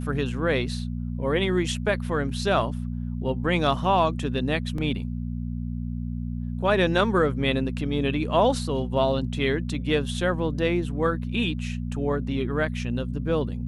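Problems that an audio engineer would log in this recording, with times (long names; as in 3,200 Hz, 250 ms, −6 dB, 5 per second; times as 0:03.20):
mains hum 60 Hz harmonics 4 −30 dBFS
0:04.78: drop-out 3.2 ms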